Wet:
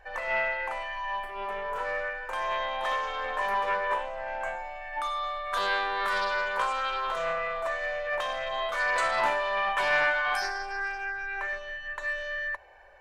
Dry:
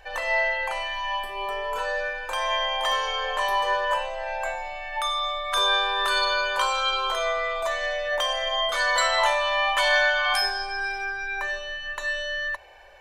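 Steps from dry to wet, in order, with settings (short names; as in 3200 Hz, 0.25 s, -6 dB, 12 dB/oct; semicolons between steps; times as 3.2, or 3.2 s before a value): resonant high shelf 2300 Hz -6.5 dB, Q 1.5; Doppler distortion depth 0.18 ms; gain -4.5 dB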